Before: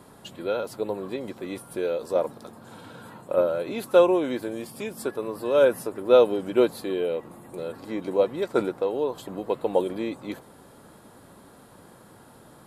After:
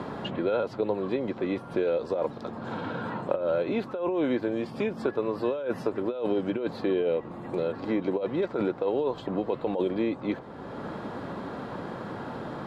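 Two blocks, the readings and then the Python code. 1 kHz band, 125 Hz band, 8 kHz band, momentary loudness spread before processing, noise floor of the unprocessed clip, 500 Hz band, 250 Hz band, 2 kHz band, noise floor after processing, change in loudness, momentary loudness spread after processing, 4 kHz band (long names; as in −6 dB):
−2.0 dB, +4.0 dB, below −15 dB, 18 LU, −51 dBFS, −4.5 dB, +1.5 dB, −1.5 dB, −42 dBFS, −4.5 dB, 9 LU, −4.0 dB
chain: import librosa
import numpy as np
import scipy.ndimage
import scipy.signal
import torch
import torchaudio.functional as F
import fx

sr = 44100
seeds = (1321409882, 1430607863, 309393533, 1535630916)

y = fx.over_compress(x, sr, threshold_db=-26.0, ratio=-1.0)
y = fx.air_absorb(y, sr, metres=210.0)
y = fx.band_squash(y, sr, depth_pct=70)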